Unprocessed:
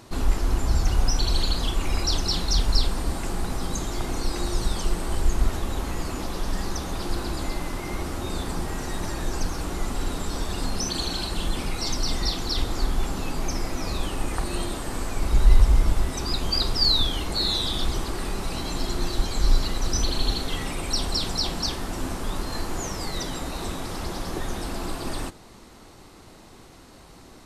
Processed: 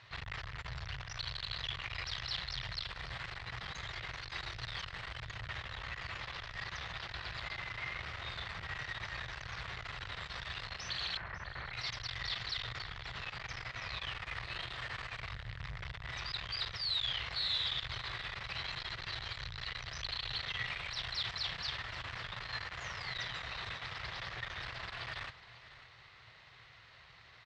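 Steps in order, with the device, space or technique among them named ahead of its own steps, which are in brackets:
0:11.17–0:11.73: Butterworth low-pass 2,000 Hz 48 dB per octave
scooped metal amplifier (tube saturation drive 29 dB, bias 0.7; loudspeaker in its box 99–3,700 Hz, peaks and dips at 120 Hz +8 dB, 210 Hz −8 dB, 830 Hz −4 dB, 1,900 Hz +7 dB; guitar amp tone stack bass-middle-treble 10-0-10)
single-tap delay 546 ms −16 dB
level +4.5 dB

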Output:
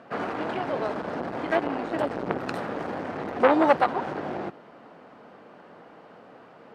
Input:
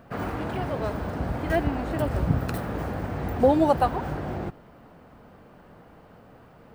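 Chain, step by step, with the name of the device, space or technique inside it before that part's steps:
public-address speaker with an overloaded transformer (saturating transformer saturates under 1,000 Hz; band-pass filter 270–5,400 Hz)
level +4 dB

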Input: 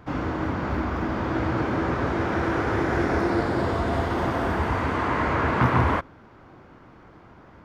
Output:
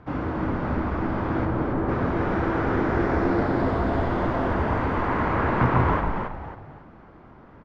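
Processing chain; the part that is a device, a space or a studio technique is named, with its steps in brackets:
through cloth (low-pass filter 6,800 Hz 12 dB per octave; high-shelf EQ 3,200 Hz −12 dB)
0:01.45–0:01.89: high-shelf EQ 2,000 Hz −12 dB
echo with shifted repeats 274 ms, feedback 34%, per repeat −74 Hz, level −5 dB

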